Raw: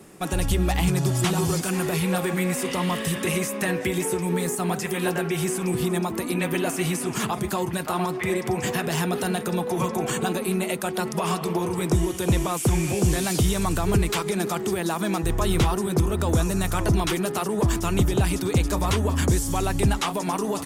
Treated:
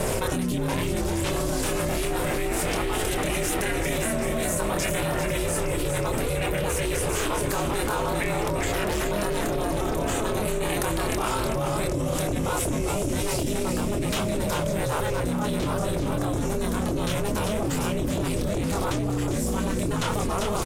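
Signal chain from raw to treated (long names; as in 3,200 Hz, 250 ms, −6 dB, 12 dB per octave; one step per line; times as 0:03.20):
multi-voice chorus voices 2, 0.16 Hz, delay 26 ms, depth 1.1 ms
in parallel at −10 dB: hard clipping −27.5 dBFS, distortion −7 dB
on the sum: ring modulation 210 Hz
on a send: echo with shifted repeats 397 ms, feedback 46%, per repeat −68 Hz, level −6 dB
on the sum: envelope flattener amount 100%
level −6.5 dB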